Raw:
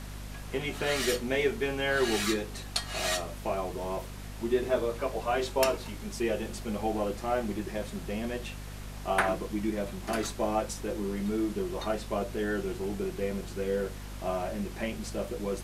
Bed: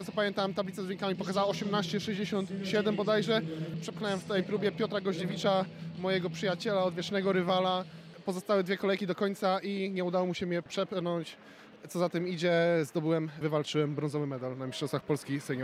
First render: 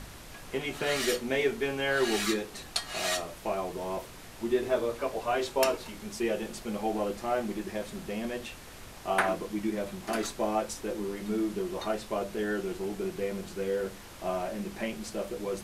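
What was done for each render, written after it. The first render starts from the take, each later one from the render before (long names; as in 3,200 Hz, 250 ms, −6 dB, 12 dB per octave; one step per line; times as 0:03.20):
hum removal 50 Hz, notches 5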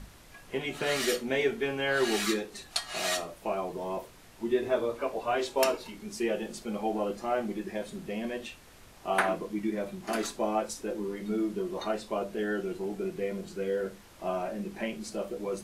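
noise reduction from a noise print 7 dB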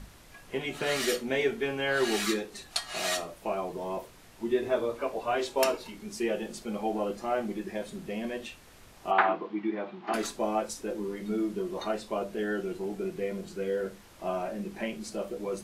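0:09.11–0:10.14: loudspeaker in its box 250–3,700 Hz, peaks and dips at 330 Hz +3 dB, 550 Hz −5 dB, 830 Hz +8 dB, 1,200 Hz +5 dB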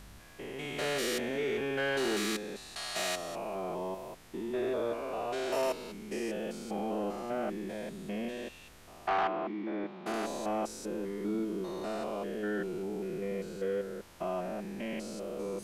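spectrum averaged block by block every 200 ms
soft clipping −23 dBFS, distortion −19 dB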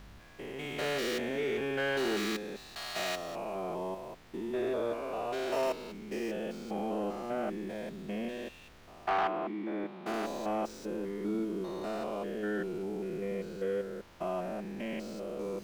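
running median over 5 samples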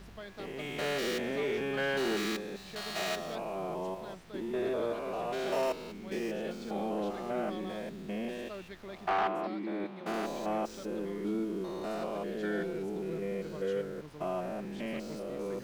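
mix in bed −16.5 dB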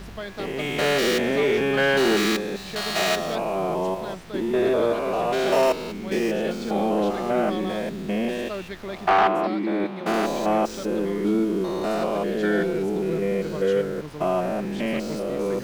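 level +11.5 dB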